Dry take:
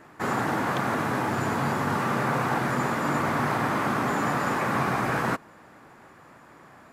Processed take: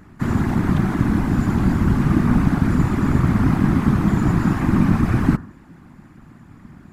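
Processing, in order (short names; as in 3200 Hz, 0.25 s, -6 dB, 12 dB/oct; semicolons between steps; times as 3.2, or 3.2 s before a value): resonant low shelf 270 Hz +13 dB, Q 3; de-hum 82.8 Hz, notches 22; whisperiser; gain -2 dB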